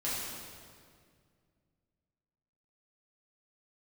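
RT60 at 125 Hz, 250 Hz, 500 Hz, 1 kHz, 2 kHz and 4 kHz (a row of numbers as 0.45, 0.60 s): 3.0, 2.7, 2.2, 1.9, 1.8, 1.6 s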